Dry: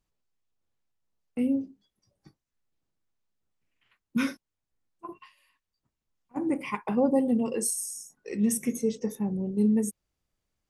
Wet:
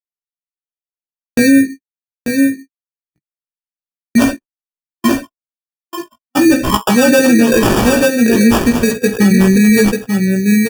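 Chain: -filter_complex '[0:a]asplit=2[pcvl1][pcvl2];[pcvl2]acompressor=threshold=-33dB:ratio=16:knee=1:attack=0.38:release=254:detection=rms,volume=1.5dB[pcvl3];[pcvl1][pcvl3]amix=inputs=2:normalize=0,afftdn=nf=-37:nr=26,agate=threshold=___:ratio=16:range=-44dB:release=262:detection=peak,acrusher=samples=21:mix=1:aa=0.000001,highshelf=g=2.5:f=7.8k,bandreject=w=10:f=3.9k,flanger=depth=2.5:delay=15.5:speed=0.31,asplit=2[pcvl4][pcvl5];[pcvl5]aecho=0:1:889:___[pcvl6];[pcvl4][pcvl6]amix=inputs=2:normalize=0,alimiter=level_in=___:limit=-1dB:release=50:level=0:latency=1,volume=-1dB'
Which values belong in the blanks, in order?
-42dB, 0.447, 22dB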